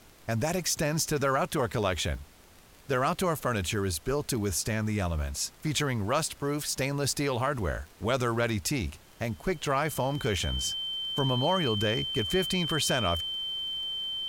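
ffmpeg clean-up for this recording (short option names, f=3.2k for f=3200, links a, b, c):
-af "adeclick=t=4,bandreject=f=3.1k:w=30,afftdn=nr=23:nf=-53"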